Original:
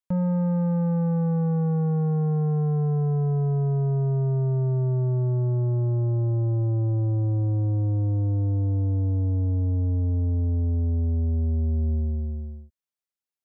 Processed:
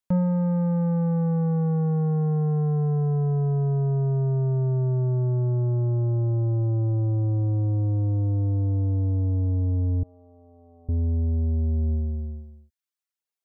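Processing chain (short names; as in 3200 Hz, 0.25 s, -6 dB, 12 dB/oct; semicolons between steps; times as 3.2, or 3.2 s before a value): reverb removal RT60 0.75 s; 10.03–10.89 vowel filter a; gain +3 dB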